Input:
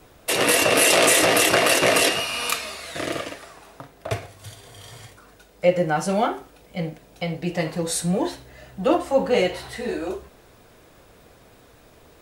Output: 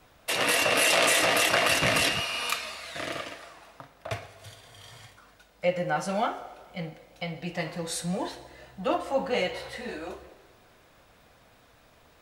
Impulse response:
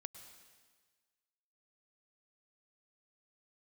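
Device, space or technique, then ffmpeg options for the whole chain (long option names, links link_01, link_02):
filtered reverb send: -filter_complex "[0:a]asplit=3[link_01][link_02][link_03];[link_01]afade=type=out:start_time=1.67:duration=0.02[link_04];[link_02]asubboost=boost=7:cutoff=210,afade=type=in:start_time=1.67:duration=0.02,afade=type=out:start_time=2.2:duration=0.02[link_05];[link_03]afade=type=in:start_time=2.2:duration=0.02[link_06];[link_04][link_05][link_06]amix=inputs=3:normalize=0,asplit=2[link_07][link_08];[link_08]highpass=frequency=370:width=0.5412,highpass=frequency=370:width=1.3066,lowpass=6300[link_09];[1:a]atrim=start_sample=2205[link_10];[link_09][link_10]afir=irnorm=-1:irlink=0,volume=1.5dB[link_11];[link_07][link_11]amix=inputs=2:normalize=0,volume=-8dB"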